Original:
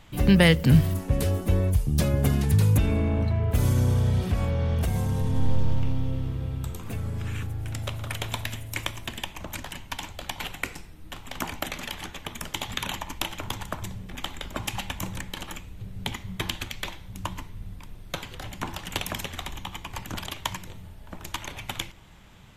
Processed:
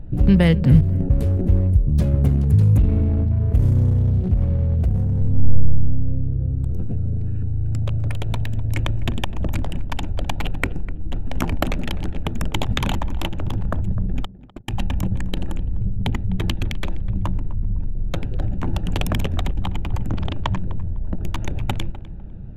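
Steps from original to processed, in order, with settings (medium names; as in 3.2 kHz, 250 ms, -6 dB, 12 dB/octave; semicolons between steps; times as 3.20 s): local Wiener filter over 41 samples; 14.25–14.70 s: gate -28 dBFS, range -49 dB; tilt EQ -2.5 dB/octave; in parallel at +0.5 dB: compressor with a negative ratio -27 dBFS, ratio -0.5; 20.07–20.75 s: on the sum: distance through air 130 m; on a send: tape echo 253 ms, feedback 28%, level -13.5 dB, low-pass 1.3 kHz; on the sum: trim -2.5 dB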